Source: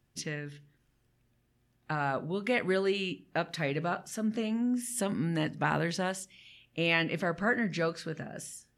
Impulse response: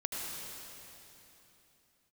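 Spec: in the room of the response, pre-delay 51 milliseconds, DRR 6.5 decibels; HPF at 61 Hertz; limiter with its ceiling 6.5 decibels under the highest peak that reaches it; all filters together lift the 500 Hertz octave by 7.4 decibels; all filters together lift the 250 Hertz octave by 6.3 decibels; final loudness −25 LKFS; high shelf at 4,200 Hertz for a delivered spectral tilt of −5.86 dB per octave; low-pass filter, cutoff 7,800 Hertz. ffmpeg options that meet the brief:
-filter_complex "[0:a]highpass=61,lowpass=7800,equalizer=frequency=250:width_type=o:gain=6,equalizer=frequency=500:width_type=o:gain=7.5,highshelf=frequency=4200:gain=-8.5,alimiter=limit=-17.5dB:level=0:latency=1,asplit=2[link_01][link_02];[1:a]atrim=start_sample=2205,adelay=51[link_03];[link_02][link_03]afir=irnorm=-1:irlink=0,volume=-10dB[link_04];[link_01][link_04]amix=inputs=2:normalize=0,volume=2.5dB"

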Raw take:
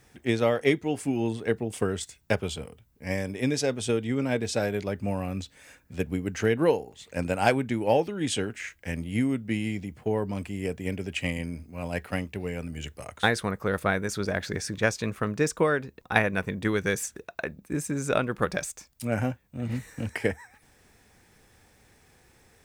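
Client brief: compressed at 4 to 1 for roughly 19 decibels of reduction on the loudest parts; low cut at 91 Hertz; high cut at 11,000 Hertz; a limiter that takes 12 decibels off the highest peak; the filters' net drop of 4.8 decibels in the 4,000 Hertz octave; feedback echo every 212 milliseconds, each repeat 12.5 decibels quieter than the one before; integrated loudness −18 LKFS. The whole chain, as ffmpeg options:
ffmpeg -i in.wav -af "highpass=91,lowpass=11000,equalizer=frequency=4000:width_type=o:gain=-6.5,acompressor=threshold=-41dB:ratio=4,alimiter=level_in=8.5dB:limit=-24dB:level=0:latency=1,volume=-8.5dB,aecho=1:1:212|424|636:0.237|0.0569|0.0137,volume=27dB" out.wav

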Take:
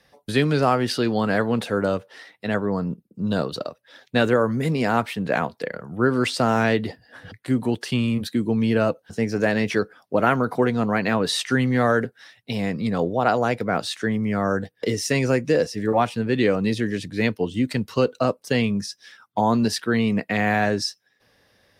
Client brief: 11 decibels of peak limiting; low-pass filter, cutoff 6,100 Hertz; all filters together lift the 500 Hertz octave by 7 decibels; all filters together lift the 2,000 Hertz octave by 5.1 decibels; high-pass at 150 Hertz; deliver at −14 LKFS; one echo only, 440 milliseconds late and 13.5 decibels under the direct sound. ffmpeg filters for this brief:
ffmpeg -i in.wav -af "highpass=150,lowpass=6100,equalizer=frequency=500:width_type=o:gain=8,equalizer=frequency=2000:width_type=o:gain=6,alimiter=limit=-12.5dB:level=0:latency=1,aecho=1:1:440:0.211,volume=9dB" out.wav

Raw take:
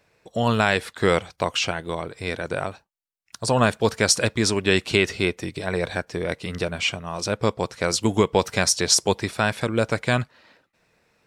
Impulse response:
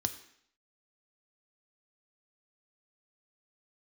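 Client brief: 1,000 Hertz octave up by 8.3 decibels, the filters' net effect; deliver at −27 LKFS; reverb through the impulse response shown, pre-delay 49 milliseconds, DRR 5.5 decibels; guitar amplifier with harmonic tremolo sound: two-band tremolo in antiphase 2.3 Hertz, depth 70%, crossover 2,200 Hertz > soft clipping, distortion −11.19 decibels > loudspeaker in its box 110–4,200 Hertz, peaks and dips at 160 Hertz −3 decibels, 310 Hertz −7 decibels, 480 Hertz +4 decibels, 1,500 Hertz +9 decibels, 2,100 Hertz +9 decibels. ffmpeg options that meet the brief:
-filter_complex "[0:a]equalizer=frequency=1000:width_type=o:gain=8,asplit=2[link_01][link_02];[1:a]atrim=start_sample=2205,adelay=49[link_03];[link_02][link_03]afir=irnorm=-1:irlink=0,volume=-7dB[link_04];[link_01][link_04]amix=inputs=2:normalize=0,acrossover=split=2200[link_05][link_06];[link_05]aeval=exprs='val(0)*(1-0.7/2+0.7/2*cos(2*PI*2.3*n/s))':channel_layout=same[link_07];[link_06]aeval=exprs='val(0)*(1-0.7/2-0.7/2*cos(2*PI*2.3*n/s))':channel_layout=same[link_08];[link_07][link_08]amix=inputs=2:normalize=0,asoftclip=threshold=-15dB,highpass=110,equalizer=frequency=160:width_type=q:width=4:gain=-3,equalizer=frequency=310:width_type=q:width=4:gain=-7,equalizer=frequency=480:width_type=q:width=4:gain=4,equalizer=frequency=1500:width_type=q:width=4:gain=9,equalizer=frequency=2100:width_type=q:width=4:gain=9,lowpass=frequency=4200:width=0.5412,lowpass=frequency=4200:width=1.3066,volume=-4dB"

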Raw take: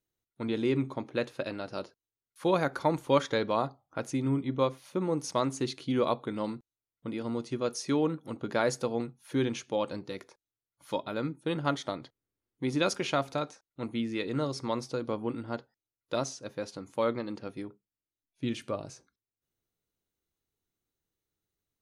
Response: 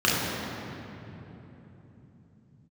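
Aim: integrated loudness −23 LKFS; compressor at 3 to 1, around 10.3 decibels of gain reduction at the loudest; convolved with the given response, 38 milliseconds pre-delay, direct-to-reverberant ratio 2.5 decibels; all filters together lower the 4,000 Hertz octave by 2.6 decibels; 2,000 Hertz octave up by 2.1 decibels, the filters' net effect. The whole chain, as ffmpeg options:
-filter_complex "[0:a]equalizer=frequency=2000:width_type=o:gain=4,equalizer=frequency=4000:width_type=o:gain=-4.5,acompressor=threshold=-34dB:ratio=3,asplit=2[link_01][link_02];[1:a]atrim=start_sample=2205,adelay=38[link_03];[link_02][link_03]afir=irnorm=-1:irlink=0,volume=-20.5dB[link_04];[link_01][link_04]amix=inputs=2:normalize=0,volume=12.5dB"

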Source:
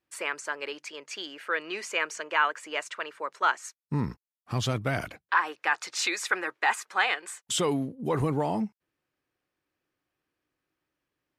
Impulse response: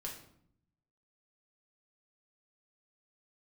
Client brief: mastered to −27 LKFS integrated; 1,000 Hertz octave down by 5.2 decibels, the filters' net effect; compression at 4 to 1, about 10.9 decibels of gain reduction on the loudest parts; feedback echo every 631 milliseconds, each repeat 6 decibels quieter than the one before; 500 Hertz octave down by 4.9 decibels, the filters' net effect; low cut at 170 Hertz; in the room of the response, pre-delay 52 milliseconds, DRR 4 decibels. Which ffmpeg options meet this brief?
-filter_complex "[0:a]highpass=170,equalizer=frequency=500:width_type=o:gain=-4.5,equalizer=frequency=1000:width_type=o:gain=-5.5,acompressor=threshold=-36dB:ratio=4,aecho=1:1:631|1262|1893|2524|3155|3786:0.501|0.251|0.125|0.0626|0.0313|0.0157,asplit=2[link_01][link_02];[1:a]atrim=start_sample=2205,adelay=52[link_03];[link_02][link_03]afir=irnorm=-1:irlink=0,volume=-2.5dB[link_04];[link_01][link_04]amix=inputs=2:normalize=0,volume=10.5dB"

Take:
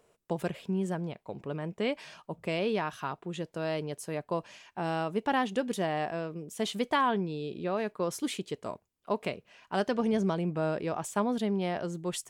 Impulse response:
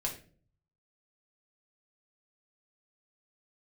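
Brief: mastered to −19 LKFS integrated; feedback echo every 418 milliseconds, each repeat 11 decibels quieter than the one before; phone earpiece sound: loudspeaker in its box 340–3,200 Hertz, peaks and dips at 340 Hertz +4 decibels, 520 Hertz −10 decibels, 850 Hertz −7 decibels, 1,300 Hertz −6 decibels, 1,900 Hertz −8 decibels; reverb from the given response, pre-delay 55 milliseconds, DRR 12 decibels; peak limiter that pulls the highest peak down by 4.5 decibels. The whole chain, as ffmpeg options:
-filter_complex "[0:a]alimiter=limit=-21dB:level=0:latency=1,aecho=1:1:418|836|1254:0.282|0.0789|0.0221,asplit=2[link_01][link_02];[1:a]atrim=start_sample=2205,adelay=55[link_03];[link_02][link_03]afir=irnorm=-1:irlink=0,volume=-14.5dB[link_04];[link_01][link_04]amix=inputs=2:normalize=0,highpass=340,equalizer=frequency=340:width_type=q:width=4:gain=4,equalizer=frequency=520:width_type=q:width=4:gain=-10,equalizer=frequency=850:width_type=q:width=4:gain=-7,equalizer=frequency=1300:width_type=q:width=4:gain=-6,equalizer=frequency=1900:width_type=q:width=4:gain=-8,lowpass=frequency=3200:width=0.5412,lowpass=frequency=3200:width=1.3066,volume=19.5dB"

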